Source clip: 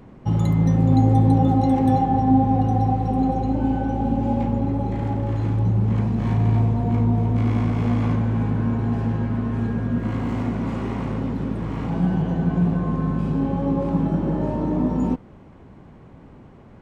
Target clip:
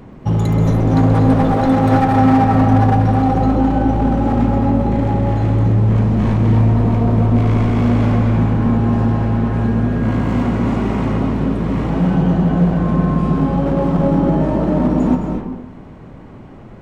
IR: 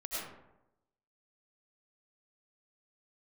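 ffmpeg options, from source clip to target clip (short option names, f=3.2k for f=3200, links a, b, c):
-filter_complex "[0:a]acontrast=71,volume=11.5dB,asoftclip=hard,volume=-11.5dB,asplit=2[a][b];[1:a]atrim=start_sample=2205,adelay=130[c];[b][c]afir=irnorm=-1:irlink=0,volume=-5dB[d];[a][d]amix=inputs=2:normalize=0"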